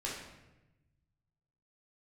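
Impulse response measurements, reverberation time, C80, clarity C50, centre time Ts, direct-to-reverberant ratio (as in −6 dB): 1.0 s, 5.0 dB, 2.0 dB, 56 ms, −5.5 dB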